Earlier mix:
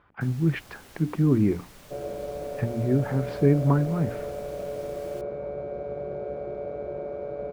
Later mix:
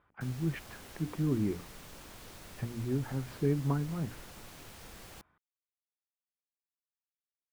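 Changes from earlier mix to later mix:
speech −9.5 dB
second sound: muted

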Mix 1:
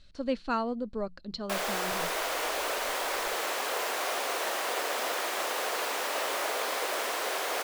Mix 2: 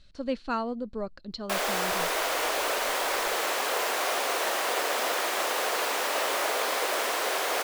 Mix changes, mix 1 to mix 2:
speech: remove mains-hum notches 60/120/180 Hz
background +3.5 dB

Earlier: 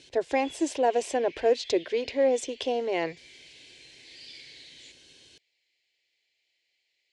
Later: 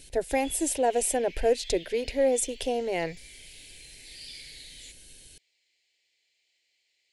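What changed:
speech: remove loudspeaker in its box 140–6,200 Hz, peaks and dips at 190 Hz −7 dB, 350 Hz +4 dB, 1,100 Hz +9 dB, 3,300 Hz +3 dB
background: remove high-frequency loss of the air 85 metres

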